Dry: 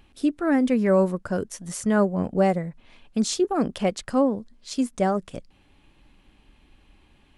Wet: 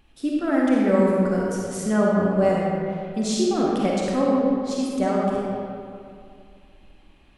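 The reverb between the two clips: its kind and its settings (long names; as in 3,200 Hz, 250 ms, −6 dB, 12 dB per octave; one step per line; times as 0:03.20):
comb and all-pass reverb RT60 2.4 s, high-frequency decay 0.6×, pre-delay 10 ms, DRR −4.5 dB
level −3.5 dB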